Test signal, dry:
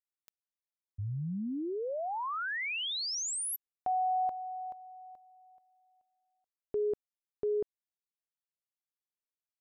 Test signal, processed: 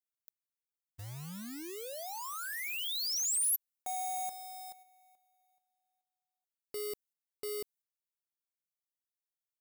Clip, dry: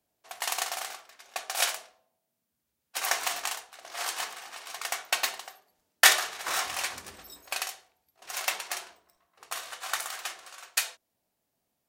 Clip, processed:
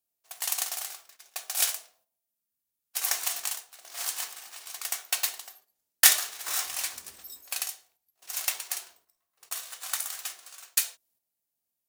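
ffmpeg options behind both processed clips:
-af "acrusher=bits=3:mode=log:mix=0:aa=0.000001,crystalizer=i=3.5:c=0,agate=range=-7dB:threshold=-42dB:ratio=16:release=201:detection=rms,volume=-9.5dB"

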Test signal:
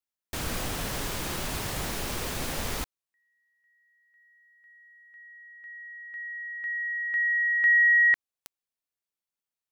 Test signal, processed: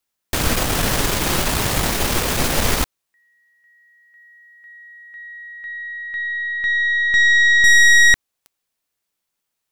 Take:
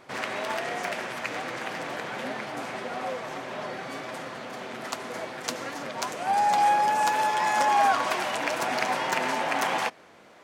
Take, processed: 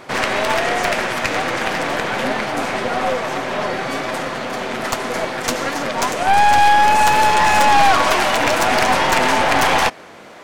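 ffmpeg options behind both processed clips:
-af "aeval=exprs='0.473*(cos(1*acos(clip(val(0)/0.473,-1,1)))-cos(1*PI/2))+0.106*(cos(5*acos(clip(val(0)/0.473,-1,1)))-cos(5*PI/2))+0.0422*(cos(6*acos(clip(val(0)/0.473,-1,1)))-cos(6*PI/2))+0.15*(cos(8*acos(clip(val(0)/0.473,-1,1)))-cos(8*PI/2))':c=same,asoftclip=type=tanh:threshold=-11.5dB,volume=6.5dB"

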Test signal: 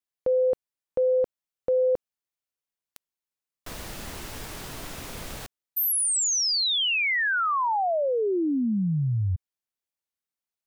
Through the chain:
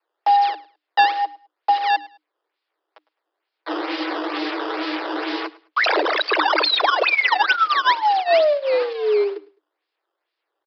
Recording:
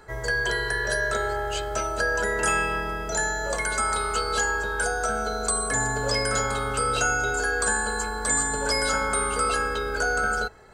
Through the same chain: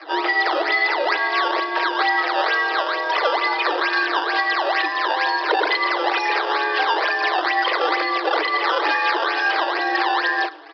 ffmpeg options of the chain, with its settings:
-filter_complex "[0:a]lowshelf=f=290:g=2,aecho=1:1:5.9:0.91,acrossover=split=390[a][b];[b]acontrast=32[c];[a][c]amix=inputs=2:normalize=0,alimiter=limit=-15dB:level=0:latency=1:release=476,acompressor=threshold=-21dB:ratio=8:attack=78:release=549:knee=1:detection=peak,acrusher=bits=3:mode=log:mix=0:aa=0.000001,flanger=delay=3.7:depth=6:regen=5:speed=0.5:shape=triangular,acrusher=samples=13:mix=1:aa=0.000001:lfo=1:lforange=20.8:lforate=2.2,afreqshift=300,aresample=11025,aresample=44100,aecho=1:1:105|210:0.0944|0.0236,volume=7.5dB"

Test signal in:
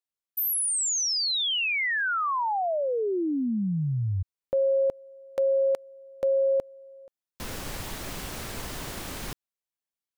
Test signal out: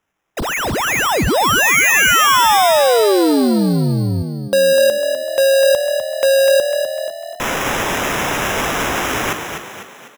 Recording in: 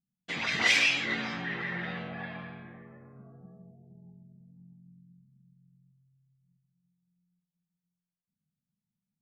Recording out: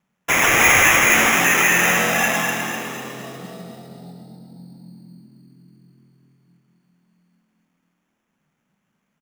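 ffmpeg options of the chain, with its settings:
-filter_complex "[0:a]asplit=2[a][b];[b]highpass=f=720:p=1,volume=26dB,asoftclip=type=tanh:threshold=-11dB[c];[a][c]amix=inputs=2:normalize=0,lowpass=f=3.7k:p=1,volume=-6dB,acrusher=samples=10:mix=1:aa=0.000001,asplit=7[d][e][f][g][h][i][j];[e]adelay=250,afreqshift=40,volume=-7dB[k];[f]adelay=500,afreqshift=80,volume=-13.4dB[l];[g]adelay=750,afreqshift=120,volume=-19.8dB[m];[h]adelay=1000,afreqshift=160,volume=-26.1dB[n];[i]adelay=1250,afreqshift=200,volume=-32.5dB[o];[j]adelay=1500,afreqshift=240,volume=-38.9dB[p];[d][k][l][m][n][o][p]amix=inputs=7:normalize=0,volume=4.5dB"

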